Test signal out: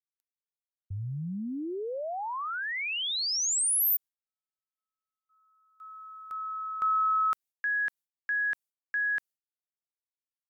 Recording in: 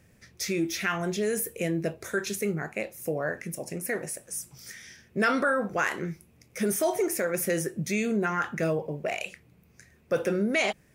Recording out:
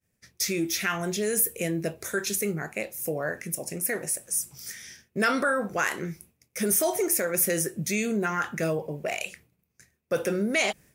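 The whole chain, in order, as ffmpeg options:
-af "agate=range=-33dB:threshold=-48dB:ratio=3:detection=peak,aemphasis=mode=production:type=cd"

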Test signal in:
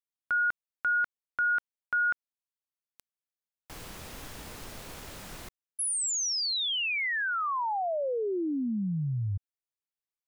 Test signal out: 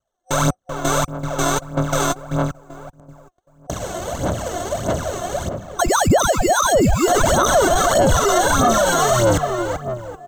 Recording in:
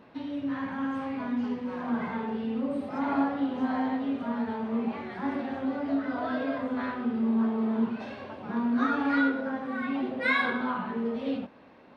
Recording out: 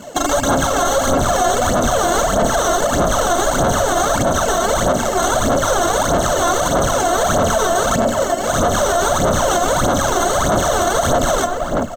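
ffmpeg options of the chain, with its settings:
-filter_complex "[0:a]asplit=2[a][b];[b]adynamicsmooth=sensitivity=1:basefreq=1.7k,volume=1dB[c];[a][c]amix=inputs=2:normalize=0,highpass=f=69:w=0.5412,highpass=f=69:w=1.3066,acrusher=samples=18:mix=1:aa=0.000001,aeval=exprs='(mod(16.8*val(0)+1,2)-1)/16.8':c=same,asplit=2[d][e];[e]adelay=386,lowpass=f=1.8k:p=1,volume=-7dB,asplit=2[f][g];[g]adelay=386,lowpass=f=1.8k:p=1,volume=0.36,asplit=2[h][i];[i]adelay=386,lowpass=f=1.8k:p=1,volume=0.36,asplit=2[j][k];[k]adelay=386,lowpass=f=1.8k:p=1,volume=0.36[l];[d][f][h][j][l]amix=inputs=5:normalize=0,aresample=32000,aresample=44100,acrusher=bits=6:mode=log:mix=0:aa=0.000001,superequalizer=8b=2.82:15b=3.16:16b=0.501,aphaser=in_gain=1:out_gain=1:delay=2.9:decay=0.67:speed=1.6:type=sinusoidal,bandreject=f=1.9k:w=11,adynamicequalizer=threshold=0.00562:dfrequency=1300:dqfactor=5.1:tfrequency=1300:tqfactor=5.1:attack=5:release=100:ratio=0.417:range=2.5:mode=boostabove:tftype=bell,alimiter=level_in=16.5dB:limit=-1dB:release=50:level=0:latency=1,volume=-6.5dB"

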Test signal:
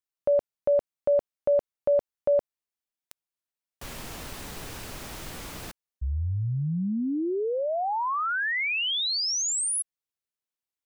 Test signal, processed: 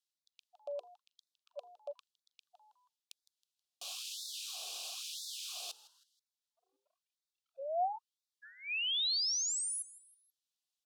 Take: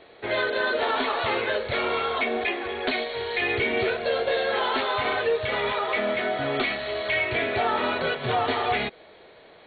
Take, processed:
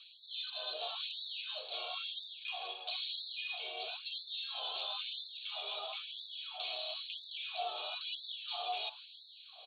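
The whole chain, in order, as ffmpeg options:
-filter_complex "[0:a]highshelf=f=2.5k:t=q:w=1.5:g=8.5,bandreject=f=60:t=h:w=6,bandreject=f=120:t=h:w=6,bandreject=f=180:t=h:w=6,bandreject=f=240:t=h:w=6,bandreject=f=300:t=h:w=6,bandreject=f=360:t=h:w=6,bandreject=f=420:t=h:w=6,bandreject=f=480:t=h:w=6,areverse,acompressor=threshold=-28dB:ratio=8:attack=0.81:release=292:knee=6:detection=rms,areverse,asplit=3[a][b][c];[a]bandpass=f=730:t=q:w=8,volume=0dB[d];[b]bandpass=f=1.09k:t=q:w=8,volume=-6dB[e];[c]bandpass=f=2.44k:t=q:w=8,volume=-9dB[f];[d][e][f]amix=inputs=3:normalize=0,aexciter=amount=10.7:drive=3.8:freq=3.3k,asplit=4[g][h][i][j];[h]adelay=160,afreqshift=140,volume=-18dB[k];[i]adelay=320,afreqshift=280,volume=-26.4dB[l];[j]adelay=480,afreqshift=420,volume=-34.8dB[m];[g][k][l][m]amix=inputs=4:normalize=0,afftfilt=real='re*gte(b*sr/1024,300*pow(3500/300,0.5+0.5*sin(2*PI*1*pts/sr)))':imag='im*gte(b*sr/1024,300*pow(3500/300,0.5+0.5*sin(2*PI*1*pts/sr)))':win_size=1024:overlap=0.75,volume=1dB"

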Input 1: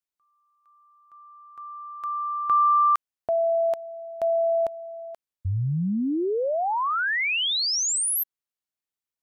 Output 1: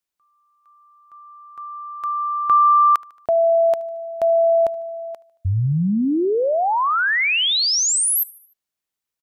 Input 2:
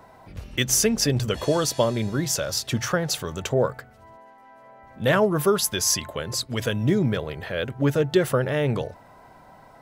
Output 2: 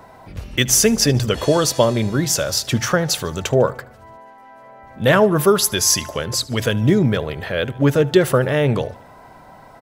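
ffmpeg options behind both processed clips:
-af "aecho=1:1:75|150|225|300:0.075|0.0397|0.0211|0.0112,volume=6dB"

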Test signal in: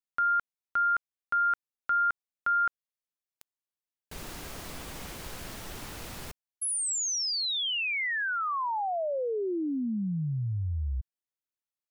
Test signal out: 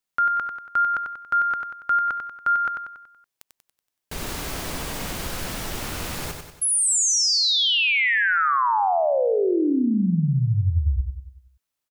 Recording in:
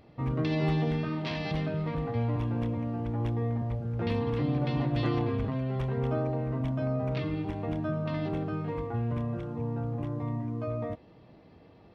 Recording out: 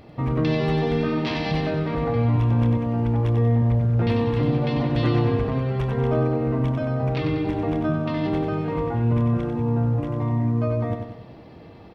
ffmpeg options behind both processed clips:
-filter_complex "[0:a]asplit=2[a][b];[b]alimiter=level_in=5dB:limit=-24dB:level=0:latency=1:release=120,volume=-5dB,volume=3dB[c];[a][c]amix=inputs=2:normalize=0,aecho=1:1:94|188|282|376|470|564:0.501|0.246|0.12|0.059|0.0289|0.0142,volume=2dB"

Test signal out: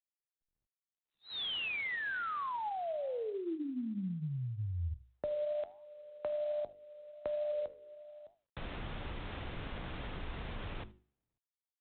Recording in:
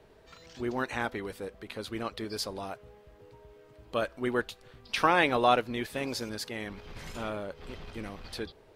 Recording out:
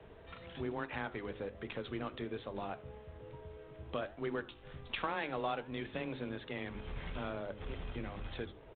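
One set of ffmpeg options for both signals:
-af "lowshelf=f=150:g=5.5,bandreject=f=50:t=h:w=6,bandreject=f=100:t=h:w=6,bandreject=f=150:t=h:w=6,bandreject=f=200:t=h:w=6,bandreject=f=250:t=h:w=6,bandreject=f=300:t=h:w=6,bandreject=f=350:t=h:w=6,bandreject=f=400:t=h:w=6,acompressor=threshold=-41dB:ratio=3,afreqshift=13,flanger=delay=8.3:depth=8.7:regen=85:speed=1.2:shape=triangular,aecho=1:1:77:0.0708,volume=6.5dB" -ar 8000 -c:a adpcm_ima_wav

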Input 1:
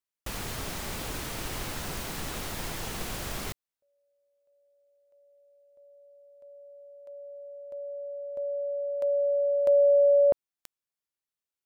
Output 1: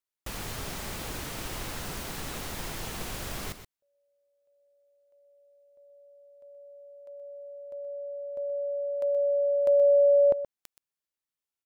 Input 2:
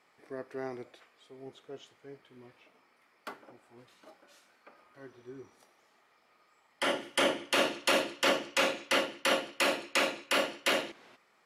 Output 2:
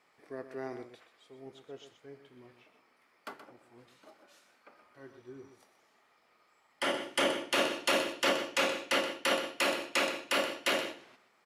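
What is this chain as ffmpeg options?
-af "aecho=1:1:125:0.282,volume=-1.5dB"

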